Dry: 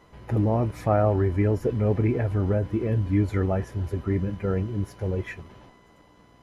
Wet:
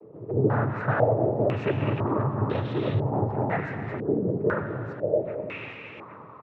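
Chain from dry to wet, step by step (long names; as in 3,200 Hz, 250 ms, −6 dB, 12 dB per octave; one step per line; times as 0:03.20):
in parallel at −1.5 dB: brickwall limiter −18.5 dBFS, peak gain reduction 9 dB
on the sum: soft clipping −23.5 dBFS, distortion −8 dB
cochlear-implant simulation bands 12
0:04.63–0:05.26: phaser with its sweep stopped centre 460 Hz, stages 4
single-tap delay 814 ms −16.5 dB
on a send at −7.5 dB: convolution reverb RT60 3.5 s, pre-delay 78 ms
on the sum: low-pass on a step sequencer 2 Hz 450–3,600 Hz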